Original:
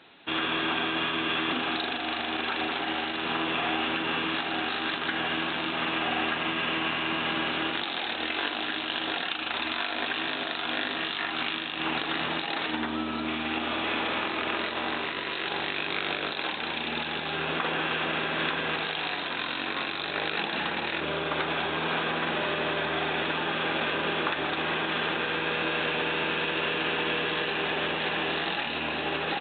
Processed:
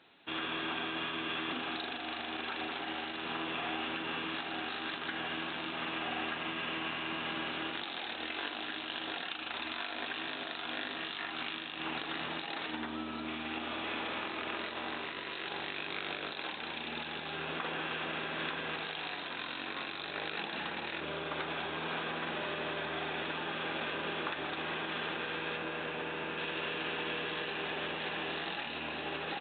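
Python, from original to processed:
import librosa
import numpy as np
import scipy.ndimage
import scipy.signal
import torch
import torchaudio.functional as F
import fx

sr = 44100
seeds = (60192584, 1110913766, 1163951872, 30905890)

y = fx.lowpass(x, sr, hz=2300.0, slope=6, at=(25.57, 26.38))
y = F.gain(torch.from_numpy(y), -8.5).numpy()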